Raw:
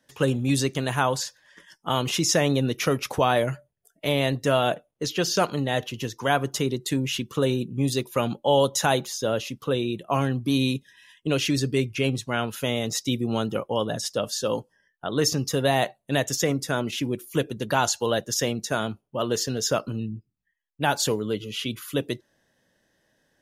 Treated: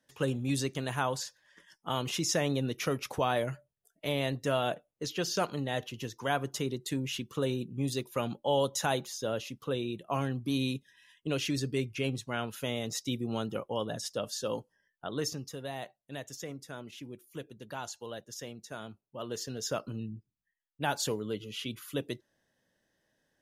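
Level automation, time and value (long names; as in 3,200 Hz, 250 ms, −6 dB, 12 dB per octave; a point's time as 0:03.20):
0:15.07 −8 dB
0:15.58 −17.5 dB
0:18.59 −17.5 dB
0:19.95 −8 dB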